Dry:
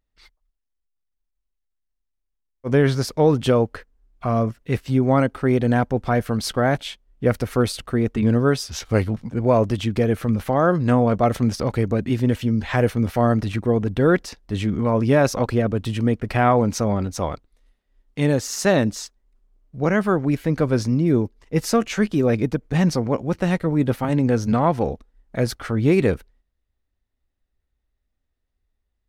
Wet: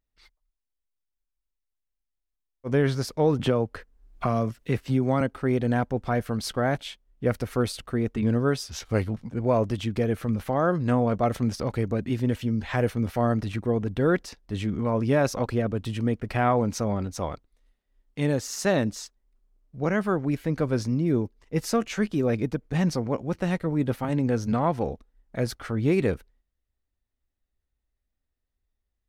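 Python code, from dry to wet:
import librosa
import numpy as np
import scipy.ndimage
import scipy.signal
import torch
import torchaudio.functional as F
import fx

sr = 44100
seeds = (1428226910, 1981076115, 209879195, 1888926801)

y = fx.band_squash(x, sr, depth_pct=70, at=(3.39, 5.21))
y = F.gain(torch.from_numpy(y), -5.5).numpy()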